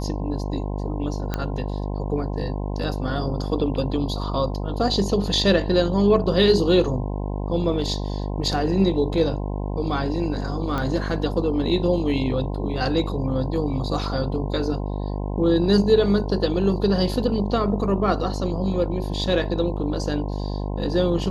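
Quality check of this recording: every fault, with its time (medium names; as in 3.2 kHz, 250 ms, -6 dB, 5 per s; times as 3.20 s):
buzz 50 Hz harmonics 21 -27 dBFS
1.34 s: pop -11 dBFS
10.78 s: pop -14 dBFS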